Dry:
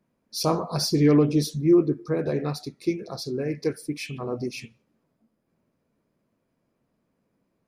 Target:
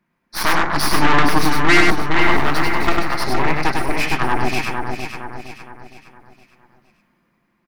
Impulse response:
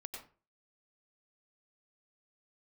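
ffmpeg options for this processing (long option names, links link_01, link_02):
-filter_complex "[0:a]asettb=1/sr,asplit=3[link_01][link_02][link_03];[link_01]atrim=end=2.214[link_04];[link_02]atrim=start=2.21:end=2.89,asetpts=PTS-STARTPTS,afade=type=in:duration=0.004:curve=qsin,afade=type=out:start_time=0.676:duration=0.004:curve=qsin,aeval=exprs='val(0)+0.5*0.0126*sgn(val(0))':channel_layout=same[link_05];[link_03]atrim=start=2.886[link_06];[link_04][link_05]acrossfade=duration=0.004:curve1=hsin:curve2=qsin[link_07];[link_07][link_06]acrossfade=duration=0.004:curve1=qsin:curve2=hsin,aecho=1:1:5.7:0.34,aeval=exprs='0.422*(cos(1*acos(clip(val(0)/0.422,-1,1)))-cos(1*PI/2))+0.168*(cos(8*acos(clip(val(0)/0.422,-1,1)))-cos(8*PI/2))':channel_layout=same,dynaudnorm=framelen=260:gausssize=9:maxgain=11.5dB,equalizer=frequency=125:width_type=o:width=1:gain=-4,equalizer=frequency=500:width_type=o:width=1:gain=-11,equalizer=frequency=1000:width_type=o:width=1:gain=5,equalizer=frequency=2000:width_type=o:width=1:gain=9,equalizer=frequency=8000:width_type=o:width=1:gain=-5,asplit=2[link_08][link_09];[link_09]aecho=0:1:463|926|1389|1852|2315:0.398|0.163|0.0669|0.0274|0.0112[link_10];[link_08][link_10]amix=inputs=2:normalize=0,asoftclip=type=tanh:threshold=-11dB,equalizer=frequency=390:width_type=o:width=1.4:gain=2.5,asplit=2[link_11][link_12];[link_12]aecho=0:1:100:0.668[link_13];[link_11][link_13]amix=inputs=2:normalize=0,volume=2dB"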